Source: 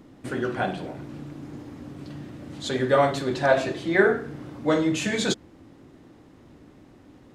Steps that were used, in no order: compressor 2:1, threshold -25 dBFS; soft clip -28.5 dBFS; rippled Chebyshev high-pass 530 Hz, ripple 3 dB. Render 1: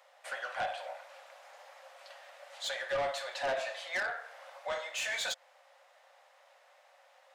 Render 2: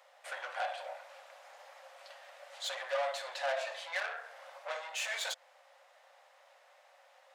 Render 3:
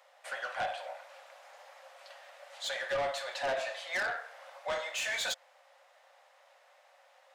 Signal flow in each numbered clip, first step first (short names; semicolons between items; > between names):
compressor > rippled Chebyshev high-pass > soft clip; compressor > soft clip > rippled Chebyshev high-pass; rippled Chebyshev high-pass > compressor > soft clip